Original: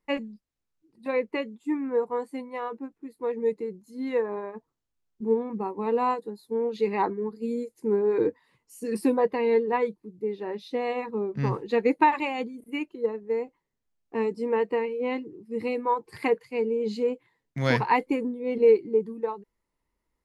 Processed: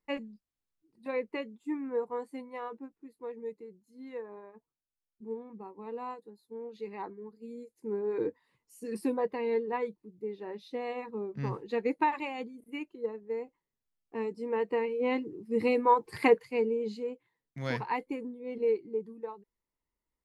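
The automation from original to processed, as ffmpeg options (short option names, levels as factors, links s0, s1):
-af "volume=3.16,afade=t=out:st=2.67:d=0.87:silence=0.398107,afade=t=in:st=7.53:d=0.7:silence=0.446684,afade=t=in:st=14.46:d=1.04:silence=0.334965,afade=t=out:st=16.26:d=0.74:silence=0.251189"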